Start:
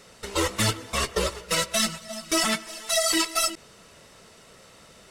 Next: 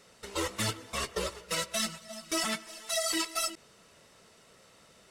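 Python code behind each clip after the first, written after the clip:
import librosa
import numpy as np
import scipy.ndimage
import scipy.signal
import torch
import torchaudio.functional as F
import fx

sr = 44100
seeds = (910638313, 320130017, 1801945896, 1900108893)

y = fx.low_shelf(x, sr, hz=66.0, db=-6.5)
y = y * librosa.db_to_amplitude(-7.5)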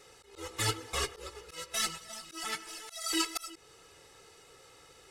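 y = x + 0.78 * np.pad(x, (int(2.4 * sr / 1000.0), 0))[:len(x)]
y = fx.auto_swell(y, sr, attack_ms=338.0)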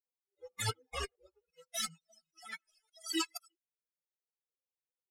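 y = fx.bin_expand(x, sr, power=3.0)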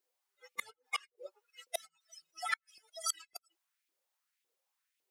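y = fx.gate_flip(x, sr, shuts_db=-31.0, range_db=-31)
y = fx.filter_lfo_highpass(y, sr, shape='saw_up', hz=1.8, low_hz=330.0, high_hz=2600.0, q=2.5)
y = y * librosa.db_to_amplitude(9.5)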